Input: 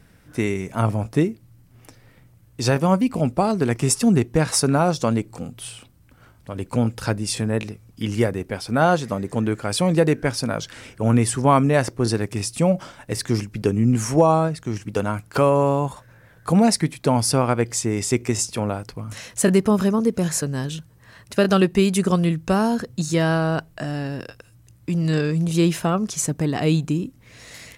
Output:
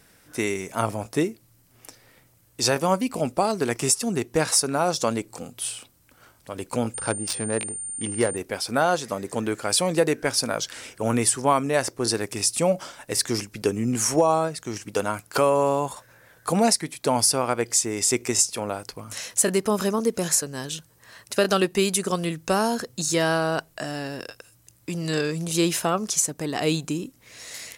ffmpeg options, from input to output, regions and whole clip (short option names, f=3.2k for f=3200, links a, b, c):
-filter_complex "[0:a]asettb=1/sr,asplit=3[a][b][c];[a]atrim=end=6.944[d];[b]atrim=start=6.94:end=8.37,asetpts=PTS-STARTPTS,afade=t=in:d=0.004:c=qsin,afade=t=out:st=1.426:d=0.004:c=qsin,highshelf=f=10k:g=10,adynamicsmooth=sensitivity=1.5:basefreq=1.2k,aeval=exprs='val(0)+0.0141*sin(2*PI*9000*n/s)':c=same[e];[c]atrim=start=8.366[f];[d][e]acrossfade=d=0.004:c1=hsin:c2=qsin[g];[g][f]acrossfade=d=0.004:c1=qsin:c2=hsin,bass=f=250:g=-11,treble=f=4k:g=7,alimiter=limit=-8dB:level=0:latency=1:release=472"